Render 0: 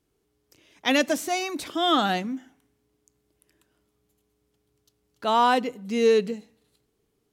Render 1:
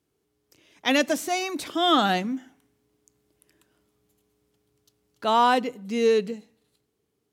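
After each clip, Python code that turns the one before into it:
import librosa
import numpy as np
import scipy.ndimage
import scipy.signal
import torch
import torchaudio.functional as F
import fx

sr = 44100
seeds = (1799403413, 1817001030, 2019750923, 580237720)

y = scipy.signal.sosfilt(scipy.signal.butter(2, 71.0, 'highpass', fs=sr, output='sos'), x)
y = fx.rider(y, sr, range_db=10, speed_s=2.0)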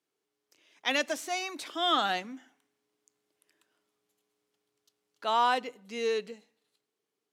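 y = fx.weighting(x, sr, curve='A')
y = F.gain(torch.from_numpy(y), -5.5).numpy()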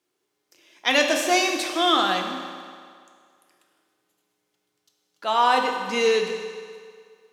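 y = fx.rider(x, sr, range_db=10, speed_s=0.5)
y = fx.rev_fdn(y, sr, rt60_s=2.1, lf_ratio=0.8, hf_ratio=0.85, size_ms=17.0, drr_db=2.0)
y = F.gain(torch.from_numpy(y), 8.0).numpy()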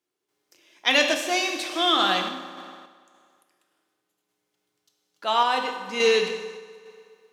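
y = fx.tremolo_random(x, sr, seeds[0], hz=3.5, depth_pct=55)
y = fx.dynamic_eq(y, sr, hz=3200.0, q=1.0, threshold_db=-38.0, ratio=4.0, max_db=4)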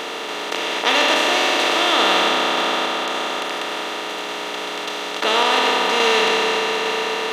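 y = fx.bin_compress(x, sr, power=0.2)
y = F.gain(torch.from_numpy(y), -3.5).numpy()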